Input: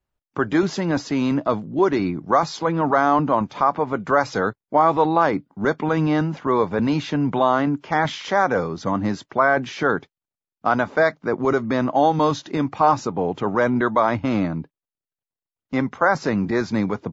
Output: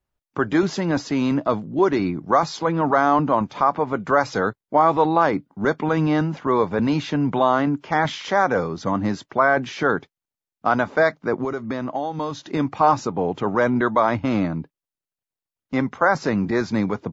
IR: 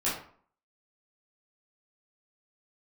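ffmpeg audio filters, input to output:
-filter_complex "[0:a]asettb=1/sr,asplit=3[link_01][link_02][link_03];[link_01]atrim=end=11.434[link_04];[link_02]atrim=start=11.43:end=12.48,asetpts=PTS-STARTPTS,afade=type=in:duration=0.004:curve=qsin,afade=type=out:start_time=1.046:duration=0.004:curve=qsin,acompressor=threshold=-23dB:ratio=6[link_05];[link_03]atrim=start=12.476[link_06];[link_04][link_05]acrossfade=duration=0.004:curve1=hsin:curve2=qsin[link_07];[link_07][link_06]acrossfade=duration=0.004:curve1=qsin:curve2=hsin"

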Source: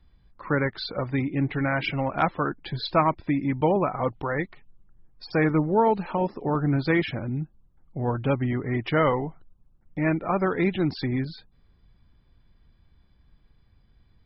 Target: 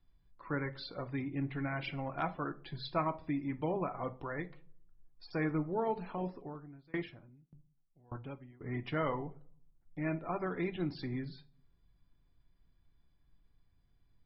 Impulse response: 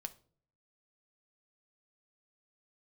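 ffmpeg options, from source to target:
-filter_complex "[1:a]atrim=start_sample=2205,asetrate=48510,aresample=44100[link_01];[0:a][link_01]afir=irnorm=-1:irlink=0,asettb=1/sr,asplit=3[link_02][link_03][link_04];[link_02]atrim=end=6.354[link_05];[link_03]atrim=start=6.35:end=8.61,asetpts=PTS-STARTPTS,afade=type=in:duration=0.004:curve=qsin,afade=type=out:start_time=2.256:duration=0.004:curve=qsin,aeval=exprs='val(0)*pow(10,-29*if(lt(mod(1.7*n/s,1),2*abs(1.7)/1000),1-mod(1.7*n/s,1)/(2*abs(1.7)/1000),(mod(1.7*n/s,1)-2*abs(1.7)/1000)/(1-2*abs(1.7)/1000))/20)':channel_layout=same[link_06];[link_04]atrim=start=8.606[link_07];[link_05][link_06]acrossfade=duration=0.004:curve1=hsin:curve2=qsin[link_08];[link_08][link_07]acrossfade=duration=0.004:curve1=qsin:curve2=hsin,volume=-8dB"

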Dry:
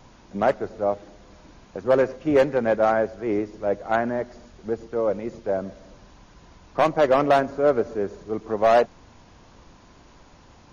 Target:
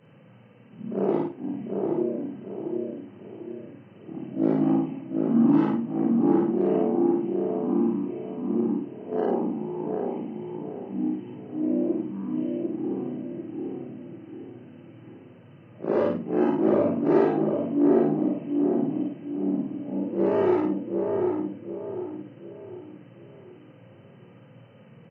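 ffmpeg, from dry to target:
ffmpeg -i in.wav -filter_complex "[0:a]afftfilt=real='re':imag='-im':win_size=2048:overlap=0.75,asplit=2[link_01][link_02];[link_02]adelay=319,lowpass=frequency=2300:poles=1,volume=-3dB,asplit=2[link_03][link_04];[link_04]adelay=319,lowpass=frequency=2300:poles=1,volume=0.42,asplit=2[link_05][link_06];[link_06]adelay=319,lowpass=frequency=2300:poles=1,volume=0.42,asplit=2[link_07][link_08];[link_08]adelay=319,lowpass=frequency=2300:poles=1,volume=0.42,asplit=2[link_09][link_10];[link_10]adelay=319,lowpass=frequency=2300:poles=1,volume=0.42[link_11];[link_03][link_05][link_07][link_09][link_11]amix=inputs=5:normalize=0[link_12];[link_01][link_12]amix=inputs=2:normalize=0,afreqshift=240,asplit=2[link_13][link_14];[link_14]aecho=0:1:22|43:0.631|0.141[link_15];[link_13][link_15]amix=inputs=2:normalize=0,asetrate=18846,aresample=44100" out.wav

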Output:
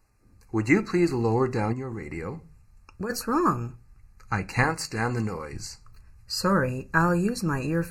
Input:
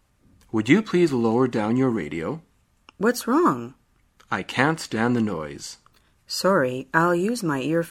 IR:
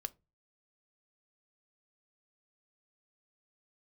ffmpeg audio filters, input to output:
-filter_complex "[0:a]asettb=1/sr,asplit=3[link_01][link_02][link_03];[link_01]atrim=end=4.634[link_04];[link_02]atrim=start=4.63:end=5.53,asetpts=PTS-STARTPTS,afade=type=in:duration=0.004:curve=qsin,afade=type=out:start_time=0.896:duration=0.004:curve=qsin,bass=frequency=250:gain=-9,treble=frequency=4000:gain=4[link_05];[link_03]atrim=start=5.526[link_06];[link_04][link_05]acrossfade=duration=0.004:curve1=hsin:curve2=qsin[link_07];[link_07][link_06]acrossfade=duration=0.004:curve1=qsin:curve2=hsin[link_08];[1:a]atrim=start_sample=2205[link_09];[link_08][link_09]afir=irnorm=-1:irlink=0,asubboost=boost=8:cutoff=120,asuperstop=centerf=3300:order=20:qfactor=2.8,asplit=3[link_10][link_11][link_12];[link_10]afade=type=out:start_time=1.72:duration=0.02[link_13];[link_11]acompressor=threshold=-29dB:ratio=12,afade=type=in:start_time=1.72:duration=0.02,afade=type=out:start_time=3.09:duration=0.02[link_14];[link_12]afade=type=in:start_time=3.09:duration=0.02[link_15];[link_13][link_14][link_15]amix=inputs=3:normalize=0"

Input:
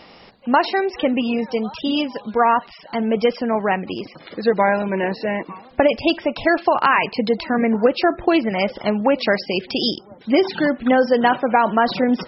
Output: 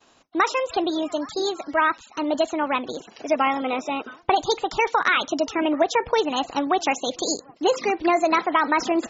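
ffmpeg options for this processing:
ffmpeg -i in.wav -af "agate=range=-33dB:threshold=-38dB:ratio=3:detection=peak,asetrate=59535,aresample=44100,volume=-4dB" out.wav

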